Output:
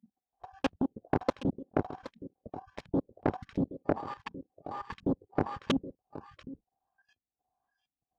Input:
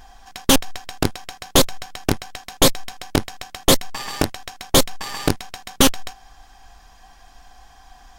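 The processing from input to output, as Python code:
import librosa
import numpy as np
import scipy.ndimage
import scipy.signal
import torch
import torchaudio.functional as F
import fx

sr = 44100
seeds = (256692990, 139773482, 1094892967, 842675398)

p1 = fx.block_reorder(x, sr, ms=107.0, group=4)
p2 = fx.peak_eq(p1, sr, hz=1900.0, db=-9.5, octaves=1.3)
p3 = p2 + fx.echo_single(p2, sr, ms=771, db=-12.0, dry=0)
p4 = fx.filter_lfo_lowpass(p3, sr, shape='saw_up', hz=1.4, low_hz=200.0, high_hz=2500.0, q=1.6)
p5 = fx.noise_reduce_blind(p4, sr, reduce_db=27)
p6 = scipy.signal.sosfilt(scipy.signal.butter(2, 91.0, 'highpass', fs=sr, output='sos'), p5)
p7 = fx.fold_sine(p6, sr, drive_db=6, ceiling_db=-4.5)
p8 = p6 + (p7 * librosa.db_to_amplitude(-8.0))
p9 = fx.level_steps(p8, sr, step_db=15)
p10 = fx.low_shelf(p9, sr, hz=370.0, db=-7.0)
y = p10 * librosa.db_to_amplitude(-7.0)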